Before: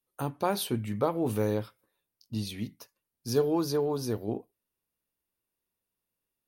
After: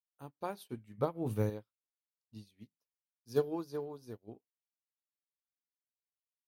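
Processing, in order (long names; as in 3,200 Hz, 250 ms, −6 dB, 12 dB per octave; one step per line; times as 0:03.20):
0:00.98–0:01.50: parametric band 120 Hz +7.5 dB 1.5 octaves
expander for the loud parts 2.5 to 1, over −46 dBFS
level −3 dB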